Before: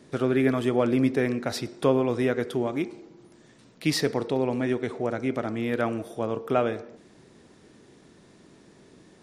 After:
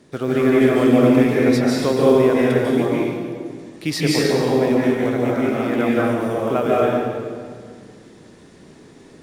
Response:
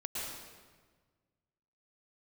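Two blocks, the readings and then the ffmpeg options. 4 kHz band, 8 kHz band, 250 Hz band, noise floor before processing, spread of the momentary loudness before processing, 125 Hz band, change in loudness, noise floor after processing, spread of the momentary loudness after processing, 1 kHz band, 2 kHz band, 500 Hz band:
+7.5 dB, +7.5 dB, +9.5 dB, -55 dBFS, 8 LU, +8.0 dB, +8.5 dB, -46 dBFS, 14 LU, +8.0 dB, +8.0 dB, +9.0 dB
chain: -filter_complex "[0:a]acrusher=bits=8:mode=log:mix=0:aa=0.000001[s0];[1:a]atrim=start_sample=2205,asetrate=32634,aresample=44100[s1];[s0][s1]afir=irnorm=-1:irlink=0,volume=1.5"

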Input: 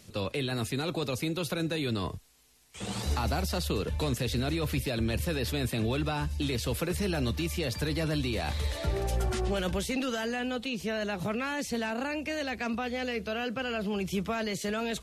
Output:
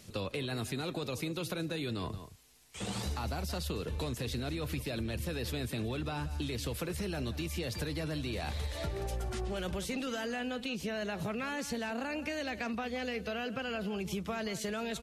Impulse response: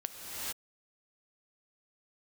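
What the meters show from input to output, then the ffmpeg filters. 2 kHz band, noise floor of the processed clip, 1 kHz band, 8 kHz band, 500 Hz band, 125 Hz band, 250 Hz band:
-4.5 dB, -46 dBFS, -5.0 dB, -4.5 dB, -5.0 dB, -5.5 dB, -5.0 dB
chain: -filter_complex "[0:a]asplit=2[s0][s1];[s1]adelay=174.9,volume=0.178,highshelf=f=4000:g=-3.94[s2];[s0][s2]amix=inputs=2:normalize=0,acompressor=threshold=0.0224:ratio=6"

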